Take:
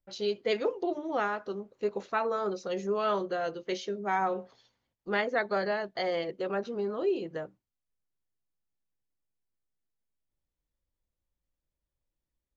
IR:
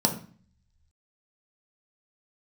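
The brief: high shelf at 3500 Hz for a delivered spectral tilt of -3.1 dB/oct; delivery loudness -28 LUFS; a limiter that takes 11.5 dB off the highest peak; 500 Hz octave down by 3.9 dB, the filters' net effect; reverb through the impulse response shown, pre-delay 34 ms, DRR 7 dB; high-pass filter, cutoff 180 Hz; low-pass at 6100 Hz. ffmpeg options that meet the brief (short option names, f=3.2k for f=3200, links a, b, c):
-filter_complex "[0:a]highpass=180,lowpass=6.1k,equalizer=f=500:t=o:g=-5,highshelf=f=3.5k:g=3,alimiter=level_in=3.5dB:limit=-24dB:level=0:latency=1,volume=-3.5dB,asplit=2[a][b];[1:a]atrim=start_sample=2205,adelay=34[c];[b][c]afir=irnorm=-1:irlink=0,volume=-18.5dB[d];[a][d]amix=inputs=2:normalize=0,volume=8dB"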